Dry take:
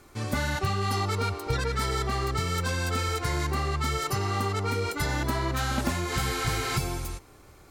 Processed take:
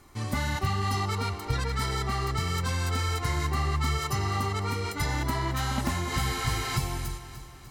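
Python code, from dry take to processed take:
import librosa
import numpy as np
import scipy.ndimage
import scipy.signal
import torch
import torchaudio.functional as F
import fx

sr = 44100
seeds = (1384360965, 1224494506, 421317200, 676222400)

y = x + 0.35 * np.pad(x, (int(1.0 * sr / 1000.0), 0))[:len(x)]
y = fx.echo_feedback(y, sr, ms=298, feedback_pct=54, wet_db=-13)
y = F.gain(torch.from_numpy(y), -2.0).numpy()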